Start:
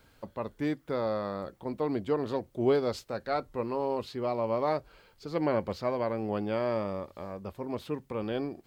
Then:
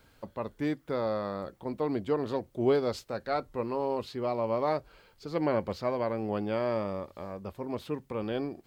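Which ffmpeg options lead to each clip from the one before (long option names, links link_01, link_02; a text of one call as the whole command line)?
ffmpeg -i in.wav -af anull out.wav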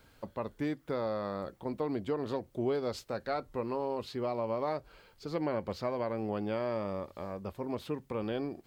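ffmpeg -i in.wav -af "acompressor=threshold=-31dB:ratio=2.5" out.wav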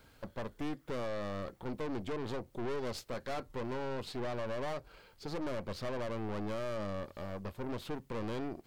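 ffmpeg -i in.wav -af "aeval=exprs='(tanh(89.1*val(0)+0.7)-tanh(0.7))/89.1':channel_layout=same,volume=4dB" out.wav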